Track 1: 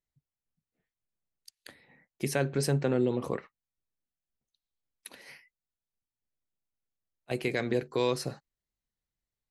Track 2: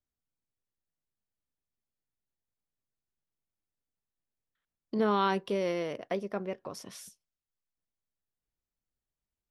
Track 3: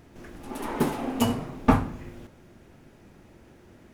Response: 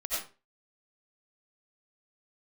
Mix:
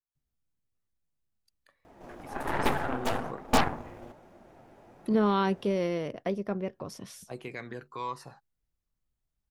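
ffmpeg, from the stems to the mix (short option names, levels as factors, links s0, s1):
-filter_complex "[0:a]equalizer=f=1100:t=o:w=1.2:g=14,aphaser=in_gain=1:out_gain=1:delay=1.8:decay=0.51:speed=0.28:type=triangular,volume=0.188,afade=t=in:st=2.4:d=0.49:silence=0.421697,asplit=2[s0][s1];[1:a]lowshelf=f=220:g=12,adelay=150,volume=0.891[s2];[2:a]equalizer=f=740:w=0.87:g=14.5,flanger=delay=3.3:depth=7.5:regen=-38:speed=1.2:shape=triangular,aeval=exprs='0.422*(cos(1*acos(clip(val(0)/0.422,-1,1)))-cos(1*PI/2))+0.0422*(cos(5*acos(clip(val(0)/0.422,-1,1)))-cos(5*PI/2))+0.15*(cos(8*acos(clip(val(0)/0.422,-1,1)))-cos(8*PI/2))':c=same,adelay=1850,volume=0.422[s3];[s1]apad=whole_len=255231[s4];[s3][s4]sidechaincompress=threshold=0.00794:ratio=3:attack=26:release=422[s5];[s0][s2][s5]amix=inputs=3:normalize=0"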